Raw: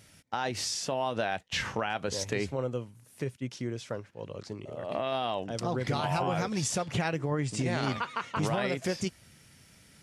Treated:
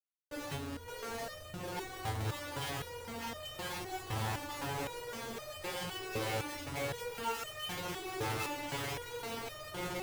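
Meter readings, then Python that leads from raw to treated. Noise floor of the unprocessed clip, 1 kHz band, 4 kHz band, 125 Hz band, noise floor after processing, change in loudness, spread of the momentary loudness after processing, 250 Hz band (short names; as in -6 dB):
-59 dBFS, -6.5 dB, -4.5 dB, -8.0 dB, -49 dBFS, -7.5 dB, 6 LU, -10.5 dB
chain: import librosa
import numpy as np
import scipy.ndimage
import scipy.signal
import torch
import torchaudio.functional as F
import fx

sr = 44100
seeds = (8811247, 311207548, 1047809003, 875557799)

y = fx.octave_mirror(x, sr, pivot_hz=630.0)
y = y + 0.89 * np.pad(y, (int(2.3 * sr / 1000.0), 0))[:len(y)]
y = fx.echo_swell(y, sr, ms=177, loudest=5, wet_db=-13.5)
y = fx.schmitt(y, sr, flips_db=-42.0)
y = fx.resonator_held(y, sr, hz=3.9, low_hz=110.0, high_hz=610.0)
y = y * 10.0 ** (4.5 / 20.0)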